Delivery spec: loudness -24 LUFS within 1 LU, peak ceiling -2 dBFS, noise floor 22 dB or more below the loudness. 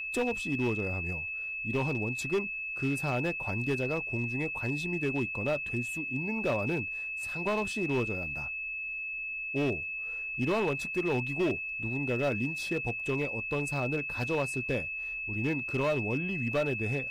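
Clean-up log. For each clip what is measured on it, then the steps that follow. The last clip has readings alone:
clipped 1.7%; flat tops at -23.5 dBFS; steady tone 2600 Hz; tone level -34 dBFS; loudness -31.5 LUFS; peak -23.5 dBFS; loudness target -24.0 LUFS
-> clip repair -23.5 dBFS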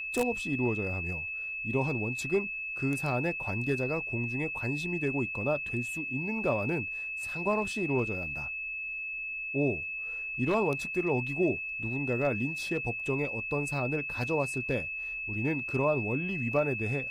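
clipped 0.0%; steady tone 2600 Hz; tone level -34 dBFS
-> notch 2600 Hz, Q 30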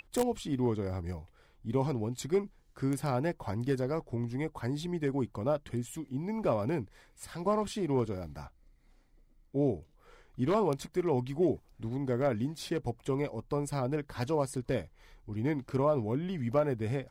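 steady tone none; loudness -33.0 LUFS; peak -14.0 dBFS; loudness target -24.0 LUFS
-> gain +9 dB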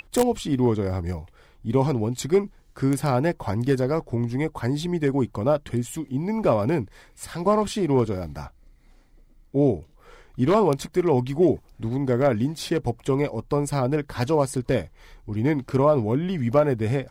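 loudness -24.0 LUFS; peak -5.0 dBFS; noise floor -55 dBFS

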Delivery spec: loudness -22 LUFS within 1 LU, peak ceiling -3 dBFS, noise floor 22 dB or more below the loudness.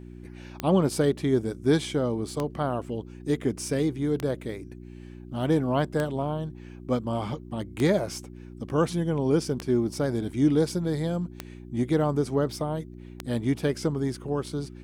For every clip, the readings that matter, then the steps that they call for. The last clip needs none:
clicks 8; hum 60 Hz; harmonics up to 360 Hz; hum level -40 dBFS; loudness -27.5 LUFS; peak -11.0 dBFS; loudness target -22.0 LUFS
-> de-click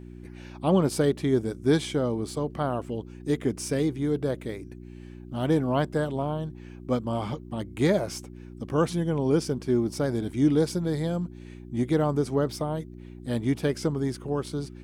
clicks 0; hum 60 Hz; harmonics up to 360 Hz; hum level -40 dBFS
-> de-hum 60 Hz, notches 6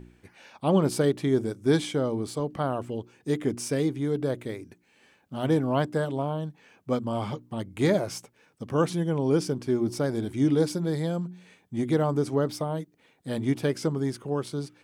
hum none; loudness -27.5 LUFS; peak -10.0 dBFS; loudness target -22.0 LUFS
-> gain +5.5 dB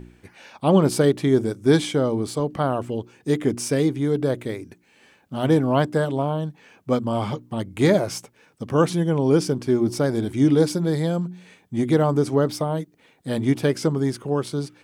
loudness -22.0 LUFS; peak -4.5 dBFS; noise floor -59 dBFS

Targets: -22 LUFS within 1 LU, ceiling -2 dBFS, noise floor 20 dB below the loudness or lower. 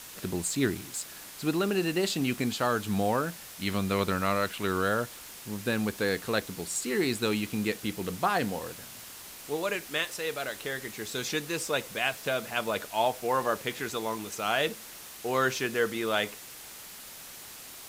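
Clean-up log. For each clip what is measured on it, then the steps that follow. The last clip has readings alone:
noise floor -46 dBFS; noise floor target -50 dBFS; loudness -30.0 LUFS; peak -13.0 dBFS; loudness target -22.0 LUFS
-> denoiser 6 dB, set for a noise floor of -46 dBFS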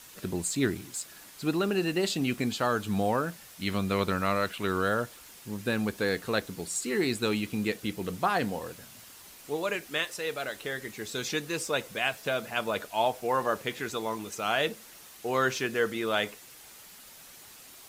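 noise floor -51 dBFS; loudness -30.5 LUFS; peak -13.0 dBFS; loudness target -22.0 LUFS
-> gain +8.5 dB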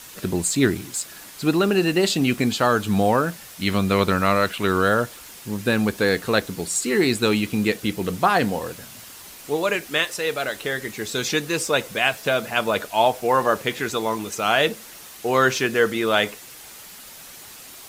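loudness -22.0 LUFS; peak -4.5 dBFS; noise floor -42 dBFS

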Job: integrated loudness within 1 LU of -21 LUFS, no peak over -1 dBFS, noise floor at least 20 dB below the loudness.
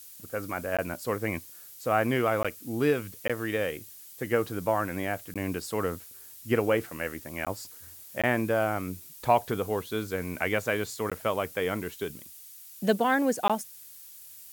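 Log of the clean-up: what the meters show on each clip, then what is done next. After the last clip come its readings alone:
dropouts 8; longest dropout 16 ms; noise floor -48 dBFS; noise floor target -50 dBFS; loudness -29.5 LUFS; peak -10.0 dBFS; loudness target -21.0 LUFS
-> interpolate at 0.77/2.43/3.28/5.34/7.45/8.22/11.1/13.48, 16 ms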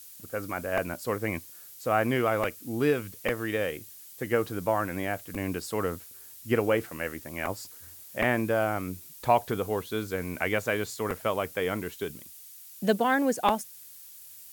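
dropouts 0; noise floor -48 dBFS; noise floor target -50 dBFS
-> noise print and reduce 6 dB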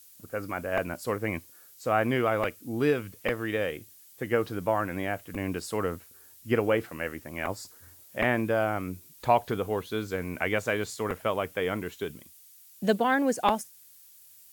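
noise floor -54 dBFS; loudness -29.5 LUFS; peak -8.5 dBFS; loudness target -21.0 LUFS
-> gain +8.5 dB; limiter -1 dBFS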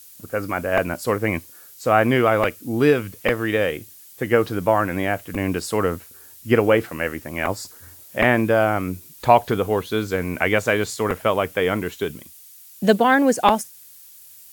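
loudness -21.0 LUFS; peak -1.0 dBFS; noise floor -46 dBFS

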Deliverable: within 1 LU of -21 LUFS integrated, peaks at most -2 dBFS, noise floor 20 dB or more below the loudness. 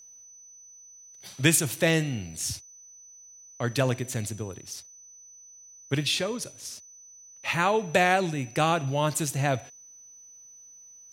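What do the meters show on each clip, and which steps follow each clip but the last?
steady tone 6000 Hz; tone level -48 dBFS; loudness -26.5 LUFS; peak -6.5 dBFS; loudness target -21.0 LUFS
-> notch 6000 Hz, Q 30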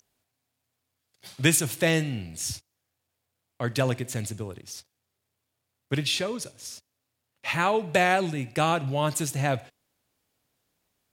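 steady tone none; loudness -26.5 LUFS; peak -6.5 dBFS; loudness target -21.0 LUFS
-> gain +5.5 dB; limiter -2 dBFS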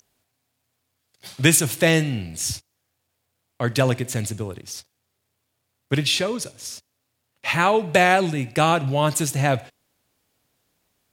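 loudness -21.0 LUFS; peak -2.0 dBFS; noise floor -76 dBFS

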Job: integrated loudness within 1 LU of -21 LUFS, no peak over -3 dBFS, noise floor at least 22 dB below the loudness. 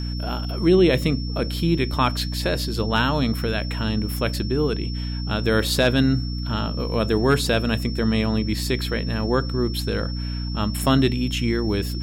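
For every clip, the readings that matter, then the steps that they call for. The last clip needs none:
hum 60 Hz; harmonics up to 300 Hz; hum level -25 dBFS; steady tone 5400 Hz; tone level -36 dBFS; loudness -22.5 LUFS; peak -6.5 dBFS; loudness target -21.0 LUFS
-> de-hum 60 Hz, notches 5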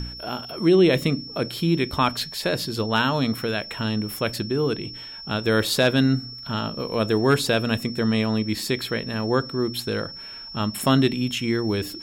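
hum none; steady tone 5400 Hz; tone level -36 dBFS
-> notch 5400 Hz, Q 30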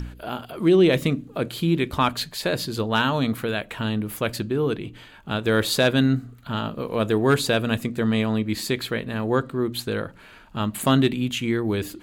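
steady tone none; loudness -23.5 LUFS; peak -6.5 dBFS; loudness target -21.0 LUFS
-> gain +2.5 dB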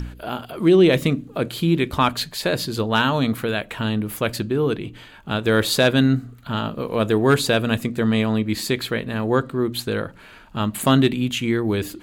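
loudness -21.0 LUFS; peak -4.0 dBFS; noise floor -45 dBFS

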